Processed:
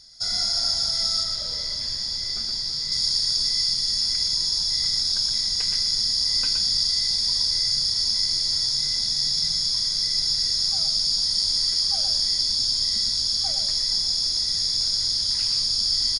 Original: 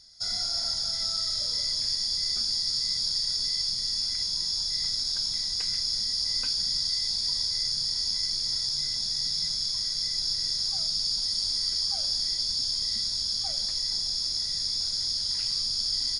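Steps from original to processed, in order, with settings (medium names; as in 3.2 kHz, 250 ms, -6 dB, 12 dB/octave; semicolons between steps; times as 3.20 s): 1.23–2.92 s: low-pass 3.1 kHz 6 dB/octave; delay 119 ms -5.5 dB; trim +4.5 dB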